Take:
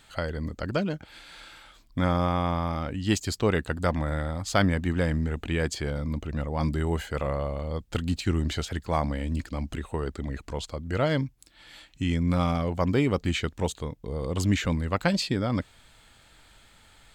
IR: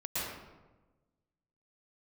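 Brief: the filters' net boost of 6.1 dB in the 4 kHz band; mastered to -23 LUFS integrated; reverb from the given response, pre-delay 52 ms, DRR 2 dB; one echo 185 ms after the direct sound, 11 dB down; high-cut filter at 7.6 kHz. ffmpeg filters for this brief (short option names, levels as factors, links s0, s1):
-filter_complex "[0:a]lowpass=7600,equalizer=f=4000:t=o:g=8,aecho=1:1:185:0.282,asplit=2[s0][s1];[1:a]atrim=start_sample=2205,adelay=52[s2];[s1][s2]afir=irnorm=-1:irlink=0,volume=0.422[s3];[s0][s3]amix=inputs=2:normalize=0,volume=1.19"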